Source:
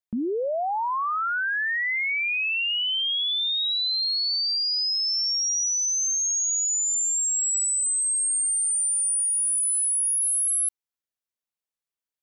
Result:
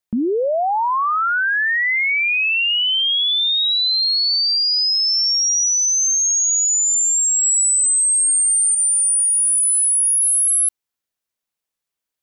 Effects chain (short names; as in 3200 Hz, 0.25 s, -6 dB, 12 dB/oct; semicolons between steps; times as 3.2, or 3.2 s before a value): 7.43–8.75 high shelf 8100 Hz +12 dB; limiter -20.5 dBFS, peak gain reduction 6 dB; gain +7.5 dB